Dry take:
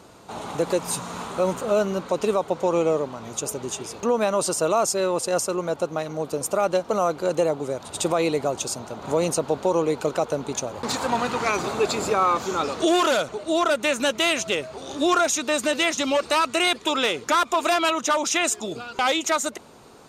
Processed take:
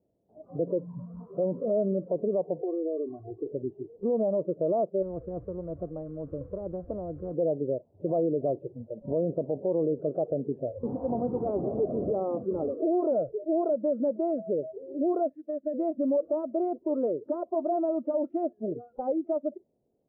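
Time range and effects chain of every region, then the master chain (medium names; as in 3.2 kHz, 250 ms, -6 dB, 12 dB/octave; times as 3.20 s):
2.61–3.47 s: distance through air 180 m + comb 2.7 ms, depth 98% + compression 16:1, threshold -25 dBFS
5.02–7.34 s: bass shelf 280 Hz +7 dB + spectrum-flattening compressor 4:1
15.29–15.74 s: gate -25 dBFS, range -14 dB + peaking EQ 1.8 kHz +14.5 dB 0.31 oct + compression 3:1, threshold -24 dBFS
whole clip: spectral noise reduction 24 dB; Chebyshev low-pass 640 Hz, order 4; peak limiter -19.5 dBFS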